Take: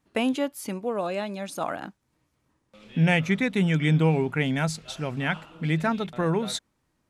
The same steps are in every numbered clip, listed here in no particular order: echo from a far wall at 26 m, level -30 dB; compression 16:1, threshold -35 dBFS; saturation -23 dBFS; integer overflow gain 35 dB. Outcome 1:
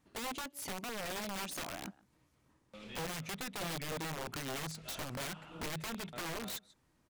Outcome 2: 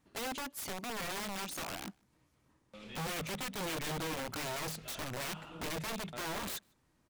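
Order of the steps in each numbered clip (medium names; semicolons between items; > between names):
echo from a far wall > compression > saturation > integer overflow; saturation > compression > integer overflow > echo from a far wall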